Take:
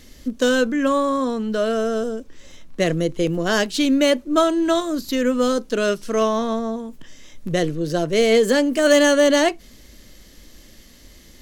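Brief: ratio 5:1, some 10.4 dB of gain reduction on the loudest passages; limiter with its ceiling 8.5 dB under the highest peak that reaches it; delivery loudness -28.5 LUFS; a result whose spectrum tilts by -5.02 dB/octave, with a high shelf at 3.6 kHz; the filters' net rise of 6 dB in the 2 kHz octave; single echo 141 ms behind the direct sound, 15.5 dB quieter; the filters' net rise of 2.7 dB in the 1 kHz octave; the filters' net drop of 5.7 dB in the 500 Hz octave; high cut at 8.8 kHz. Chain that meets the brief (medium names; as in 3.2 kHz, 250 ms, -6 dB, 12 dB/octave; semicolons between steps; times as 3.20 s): low-pass 8.8 kHz; peaking EQ 500 Hz -8.5 dB; peaking EQ 1 kHz +3.5 dB; peaking EQ 2 kHz +8 dB; treble shelf 3.6 kHz -4.5 dB; compression 5:1, threshold -23 dBFS; peak limiter -19.5 dBFS; delay 141 ms -15.5 dB; trim +1 dB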